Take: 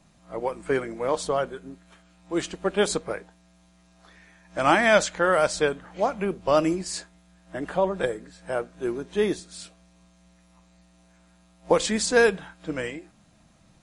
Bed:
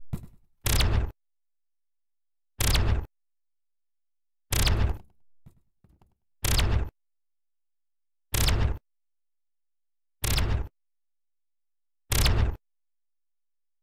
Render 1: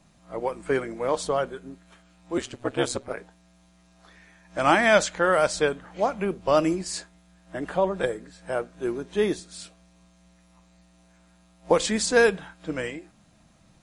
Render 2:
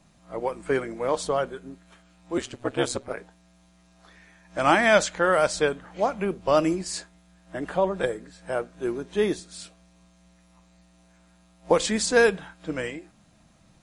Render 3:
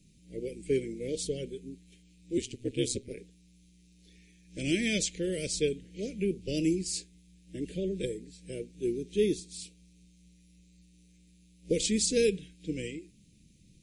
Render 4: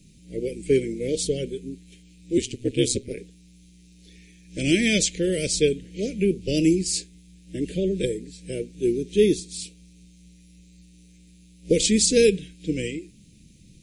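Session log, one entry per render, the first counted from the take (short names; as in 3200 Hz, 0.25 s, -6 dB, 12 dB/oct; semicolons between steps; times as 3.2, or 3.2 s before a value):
2.37–3.17 ring modulator 66 Hz
nothing audible
elliptic band-stop 440–2300 Hz, stop band 60 dB; bell 1200 Hz -7 dB 2.7 oct
gain +8.5 dB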